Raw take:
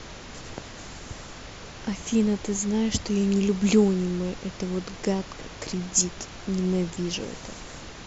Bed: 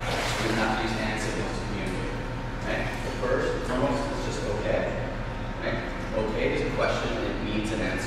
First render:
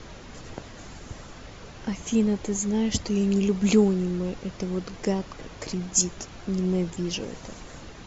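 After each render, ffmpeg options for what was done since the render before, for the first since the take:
-af "afftdn=nr=6:nf=-42"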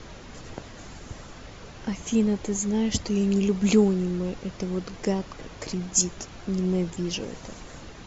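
-af anull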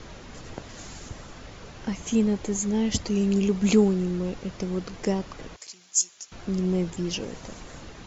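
-filter_complex "[0:a]asettb=1/sr,asplit=3[a][b][c];[a]atrim=end=0.694[d];[b]atrim=start=0.69:end=1.09,asetpts=PTS-STARTPTS,afade=t=in:d=0.004:c=qsin,afade=t=out:st=0.396:d=0.004:c=qsin,highshelf=f=5k:g=10[e];[c]atrim=start=1.086[f];[d][e]acrossfade=d=0.004:c1=hsin:c2=qsin[g];[g][f]acrossfade=d=0.004:c1=qsin:c2=hsin,asettb=1/sr,asplit=3[h][i][j];[h]atrim=end=5.564[k];[i]atrim=start=5.56:end=6.32,asetpts=PTS-STARTPTS,afade=t=in:d=0.004:c=qsin,afade=t=out:st=0.756:d=0.004:c=qsin,aderivative[l];[j]atrim=start=6.316[m];[k][l]acrossfade=d=0.004:c1=hsin:c2=qsin[n];[n][m]acrossfade=d=0.004:c1=qsin:c2=hsin"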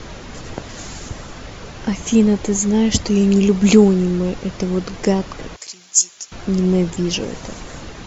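-af "volume=9dB,alimiter=limit=-1dB:level=0:latency=1"

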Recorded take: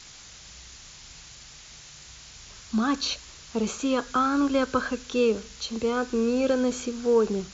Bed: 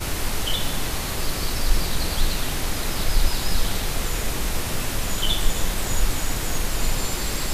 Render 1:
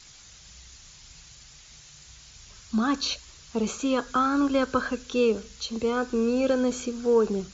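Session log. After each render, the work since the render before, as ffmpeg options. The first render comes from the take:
-af "afftdn=nr=6:nf=-47"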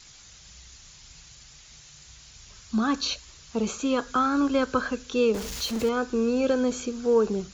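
-filter_complex "[0:a]asettb=1/sr,asplit=3[a][b][c];[a]atrim=end=5.344[d];[b]atrim=start=5.34:end=5.89,asetpts=PTS-STARTPTS,afade=t=in:d=0.004:c=qsin,afade=t=out:st=0.546:d=0.004:c=qsin,aeval=exprs='val(0)+0.5*0.0282*sgn(val(0))':c=same[e];[c]atrim=start=5.886[f];[d][e]acrossfade=d=0.004:c1=hsin:c2=qsin[g];[g][f]acrossfade=d=0.004:c1=qsin:c2=hsin"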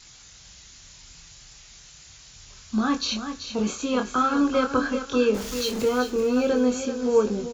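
-filter_complex "[0:a]asplit=2[a][b];[b]adelay=24,volume=-5dB[c];[a][c]amix=inputs=2:normalize=0,asplit=2[d][e];[e]aecho=0:1:384|768|1152:0.355|0.103|0.0298[f];[d][f]amix=inputs=2:normalize=0"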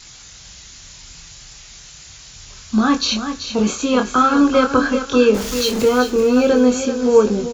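-af "volume=8dB,alimiter=limit=-2dB:level=0:latency=1"

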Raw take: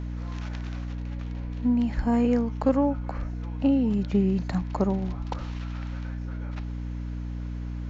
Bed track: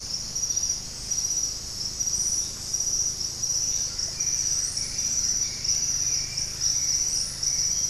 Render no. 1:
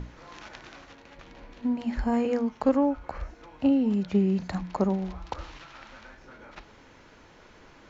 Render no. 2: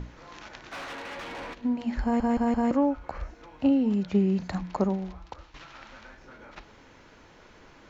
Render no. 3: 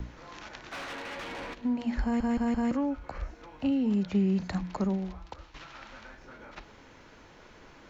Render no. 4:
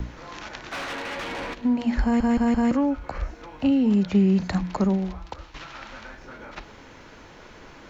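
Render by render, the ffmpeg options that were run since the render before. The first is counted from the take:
-af "bandreject=f=60:t=h:w=6,bandreject=f=120:t=h:w=6,bandreject=f=180:t=h:w=6,bandreject=f=240:t=h:w=6,bandreject=f=300:t=h:w=6"
-filter_complex "[0:a]asplit=3[a][b][c];[a]afade=t=out:st=0.71:d=0.02[d];[b]asplit=2[e][f];[f]highpass=f=720:p=1,volume=29dB,asoftclip=type=tanh:threshold=-29.5dB[g];[e][g]amix=inputs=2:normalize=0,lowpass=f=2.9k:p=1,volume=-6dB,afade=t=in:st=0.71:d=0.02,afade=t=out:st=1.53:d=0.02[h];[c]afade=t=in:st=1.53:d=0.02[i];[d][h][i]amix=inputs=3:normalize=0,asplit=6[j][k][l][m][n][o];[j]atrim=end=2.202[p];[k]atrim=start=2.028:end=2.202[q];[l]atrim=start=2.028:end=2.202[r];[m]atrim=start=2.028:end=2.202[s];[n]atrim=start=2.708:end=5.54,asetpts=PTS-STARTPTS,afade=t=out:st=2.082:d=0.75:silence=0.211349[t];[o]atrim=start=5.54,asetpts=PTS-STARTPTS,afade=t=in:d=0.004:c=hsin:silence=0.211349[u];[p][q]acrossfade=d=0.004:c1=hsin:c2=hsin[v];[v][r]acrossfade=d=0.004:c1=hsin:c2=hsin[w];[w][s]acrossfade=d=0.004:c1=hsin:c2=hsin[x];[t][u]concat=n=2:v=0:a=1[y];[x][y]acrossfade=d=0.004:c1=hsin:c2=hsin"
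-filter_complex "[0:a]acrossover=split=220|630|1200[a][b][c][d];[b]alimiter=level_in=4.5dB:limit=-24dB:level=0:latency=1,volume=-4.5dB[e];[c]acompressor=threshold=-47dB:ratio=6[f];[a][e][f][d]amix=inputs=4:normalize=0"
-af "volume=7dB"

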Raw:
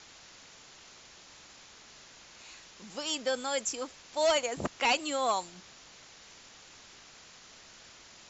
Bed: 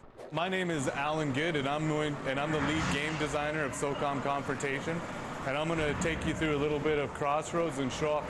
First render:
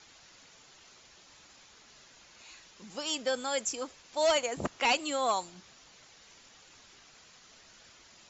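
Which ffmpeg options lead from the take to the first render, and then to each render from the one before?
-af "afftdn=nr=6:nf=-54"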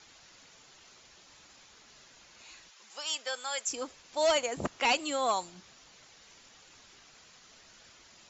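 -filter_complex "[0:a]asplit=3[a][b][c];[a]afade=t=out:st=2.69:d=0.02[d];[b]highpass=840,afade=t=in:st=2.69:d=0.02,afade=t=out:st=3.68:d=0.02[e];[c]afade=t=in:st=3.68:d=0.02[f];[d][e][f]amix=inputs=3:normalize=0"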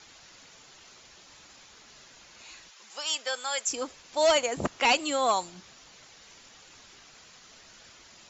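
-af "volume=4dB"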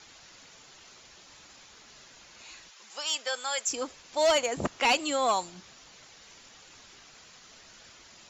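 -af "asoftclip=type=tanh:threshold=-15dB"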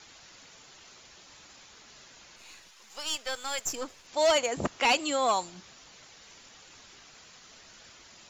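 -filter_complex "[0:a]asettb=1/sr,asplit=3[a][b][c];[a]atrim=end=2.364[d];[b]atrim=start=2.36:end=4.07,asetpts=PTS-STARTPTS,afade=t=in:d=0.004:c=qsin,afade=t=out:st=1.706:d=0.004:c=qsin,aeval=exprs='if(lt(val(0),0),0.447*val(0),val(0))':c=same[e];[c]atrim=start=4.066[f];[d][e]acrossfade=d=0.004:c1=hsin:c2=qsin[g];[g][f]acrossfade=d=0.004:c1=qsin:c2=hsin"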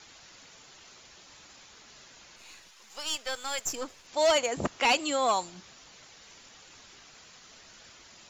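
-af anull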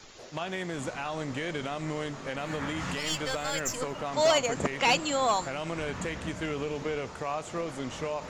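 -filter_complex "[1:a]volume=-3dB[a];[0:a][a]amix=inputs=2:normalize=0"

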